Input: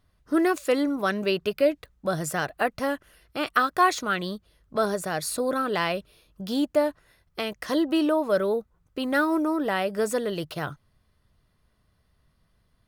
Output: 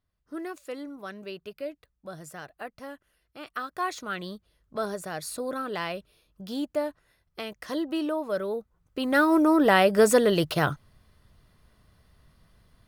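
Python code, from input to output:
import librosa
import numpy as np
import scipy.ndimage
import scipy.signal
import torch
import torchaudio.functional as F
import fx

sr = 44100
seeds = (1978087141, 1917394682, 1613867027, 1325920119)

y = fx.gain(x, sr, db=fx.line((3.4, -14.0), (4.2, -6.0), (8.48, -6.0), (9.67, 7.0)))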